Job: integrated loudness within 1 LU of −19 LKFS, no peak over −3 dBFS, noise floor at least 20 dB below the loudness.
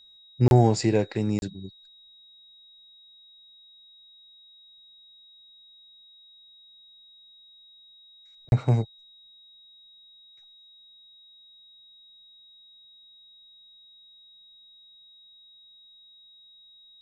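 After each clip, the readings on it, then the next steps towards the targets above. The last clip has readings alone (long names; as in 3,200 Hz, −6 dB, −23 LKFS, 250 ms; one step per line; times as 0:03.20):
number of dropouts 3; longest dropout 31 ms; interfering tone 3,800 Hz; level of the tone −51 dBFS; integrated loudness −24.0 LKFS; sample peak −8.0 dBFS; target loudness −19.0 LKFS
→ repair the gap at 0:00.48/0:01.39/0:08.49, 31 ms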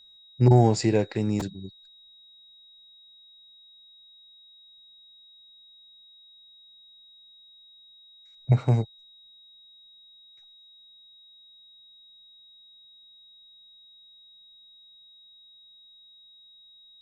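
number of dropouts 0; interfering tone 3,800 Hz; level of the tone −51 dBFS
→ notch filter 3,800 Hz, Q 30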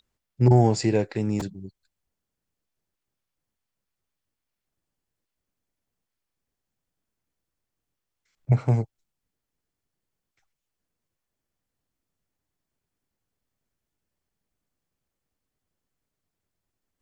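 interfering tone none found; integrated loudness −23.0 LKFS; sample peak −8.0 dBFS; target loudness −19.0 LKFS
→ level +4 dB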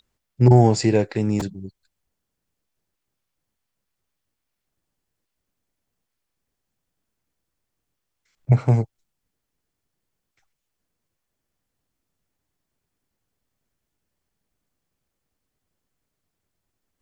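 integrated loudness −19.0 LKFS; sample peak −4.0 dBFS; background noise floor −81 dBFS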